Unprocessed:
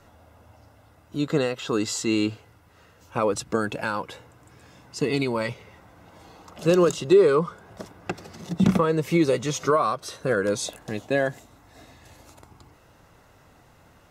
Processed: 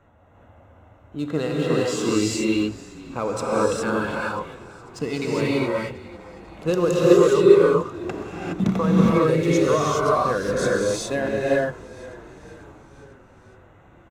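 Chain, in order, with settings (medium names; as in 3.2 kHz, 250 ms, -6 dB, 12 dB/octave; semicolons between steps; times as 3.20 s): local Wiener filter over 9 samples; frequency-shifting echo 495 ms, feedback 60%, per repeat -43 Hz, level -19 dB; gated-style reverb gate 440 ms rising, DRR -5.5 dB; trim -3 dB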